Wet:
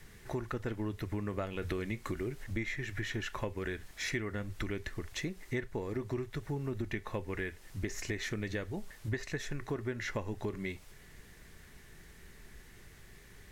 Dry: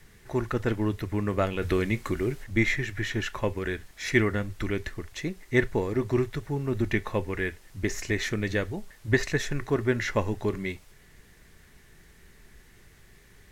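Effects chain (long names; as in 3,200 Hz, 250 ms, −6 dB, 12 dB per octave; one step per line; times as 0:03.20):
downward compressor 5 to 1, threshold −34 dBFS, peak gain reduction 16 dB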